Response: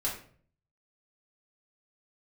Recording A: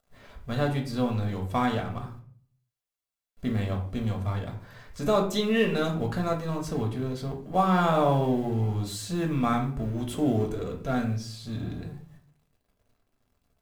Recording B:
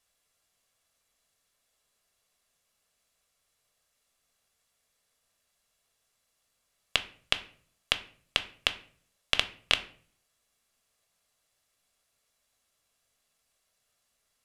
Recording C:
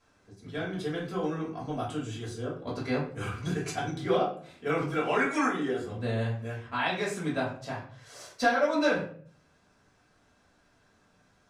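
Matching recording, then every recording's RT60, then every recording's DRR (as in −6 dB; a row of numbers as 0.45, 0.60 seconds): C; 0.50, 0.50, 0.50 seconds; 1.0, 8.5, −6.0 decibels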